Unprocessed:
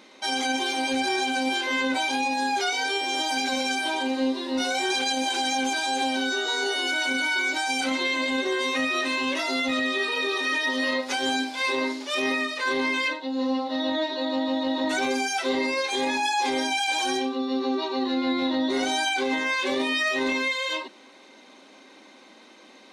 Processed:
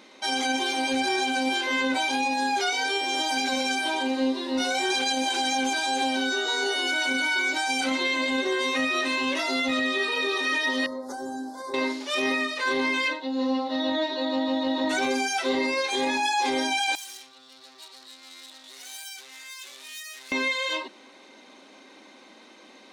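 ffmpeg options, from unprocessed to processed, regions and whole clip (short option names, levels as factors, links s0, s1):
-filter_complex "[0:a]asettb=1/sr,asplit=3[s0][s1][s2];[s0]atrim=end=10.864[s3];[s1]atrim=start=10.86:end=11.74,asetpts=PTS-STARTPTS,afade=t=in:d=0.004:c=qsin,afade=t=out:st=0.876:d=0.004:c=qsin,equalizer=f=3500:t=o:w=2.5:g=-12,acompressor=threshold=0.0316:ratio=4:attack=3.2:release=140:knee=1:detection=peak,asuperstop=centerf=2600:order=4:qfactor=0.85[s4];[s2]atrim=start=11.736[s5];[s3][s4]acrossfade=d=0.004:c1=hsin:c2=qsin[s6];[s6][s5]acrossfade=d=0.004:c1=qsin:c2=hsin,asettb=1/sr,asplit=3[s7][s8][s9];[s7]atrim=end=16.954[s10];[s8]atrim=start=16.95:end=20.32,asetpts=PTS-STARTPTS,afade=t=in:d=0.004:c=qsin,afade=t=out:st=3.366:d=0.004:c=qsin,aeval=exprs='(tanh(28.2*val(0)+0.75)-tanh(0.75))/28.2':c=same,aderivative[s11];[s9]atrim=start=20.316[s12];[s10][s11]acrossfade=d=0.004:c1=hsin:c2=qsin[s13];[s13][s12]acrossfade=d=0.004:c1=qsin:c2=hsin"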